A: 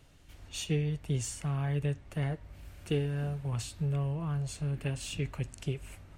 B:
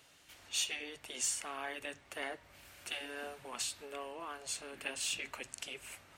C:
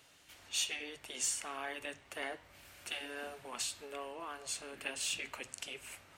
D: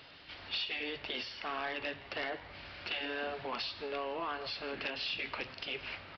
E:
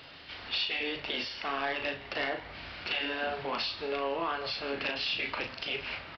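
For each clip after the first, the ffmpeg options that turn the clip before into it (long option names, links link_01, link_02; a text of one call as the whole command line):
ffmpeg -i in.wav -af "afftfilt=real='re*lt(hypot(re,im),0.0891)':imag='im*lt(hypot(re,im),0.0891)':win_size=1024:overlap=0.75,highpass=frequency=1100:poles=1,volume=5dB" out.wav
ffmpeg -i in.wav -af "flanger=delay=9.7:depth=5.3:regen=-88:speed=0.34:shape=sinusoidal,volume=4.5dB" out.wav
ffmpeg -i in.wav -filter_complex "[0:a]acompressor=threshold=-42dB:ratio=3,aresample=11025,aeval=exprs='0.0355*sin(PI/2*2.24*val(0)/0.0355)':channel_layout=same,aresample=44100,asplit=4[link_01][link_02][link_03][link_04];[link_02]adelay=166,afreqshift=130,volume=-20.5dB[link_05];[link_03]adelay=332,afreqshift=260,volume=-29.6dB[link_06];[link_04]adelay=498,afreqshift=390,volume=-38.7dB[link_07];[link_01][link_05][link_06][link_07]amix=inputs=4:normalize=0,volume=-1dB" out.wav
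ffmpeg -i in.wav -filter_complex "[0:a]asplit=2[link_01][link_02];[link_02]adelay=36,volume=-6dB[link_03];[link_01][link_03]amix=inputs=2:normalize=0,volume=4dB" out.wav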